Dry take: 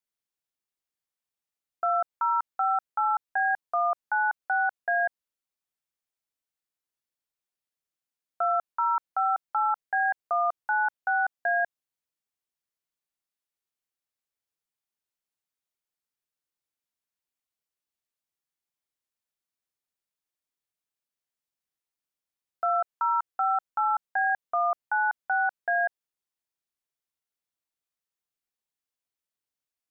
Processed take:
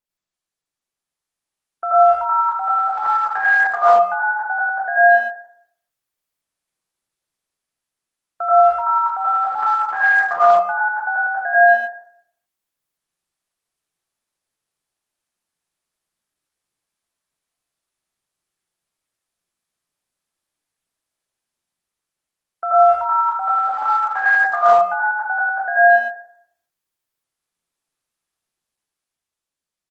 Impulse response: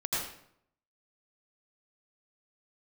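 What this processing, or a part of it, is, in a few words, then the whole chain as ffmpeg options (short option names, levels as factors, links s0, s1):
speakerphone in a meeting room: -filter_complex "[0:a]asettb=1/sr,asplit=3[s0][s1][s2];[s0]atrim=end=4.224[s3];[s1]atrim=start=4.22:end=4.74,asetpts=PTS-STARTPTS,afade=t=in:d=0.004:c=qsin,afade=t=out:st=0.516:d=0.004:c=qsin,aemphasis=mode=reproduction:type=75fm[s4];[s2]atrim=start=4.736[s5];[s3][s4]acrossfade=d=0.004:c1=hsin:c2=qsin[s6];[s6][s5]acrossfade=d=0.004:c1=qsin:c2=hsin[s7];[1:a]atrim=start_sample=2205[s8];[s7][s8]afir=irnorm=-1:irlink=0,asplit=2[s9][s10];[s10]adelay=120,highpass=300,lowpass=3400,asoftclip=type=hard:threshold=0.178,volume=0.0631[s11];[s9][s11]amix=inputs=2:normalize=0,dynaudnorm=f=210:g=11:m=2.24,volume=0.891" -ar 48000 -c:a libopus -b:a 24k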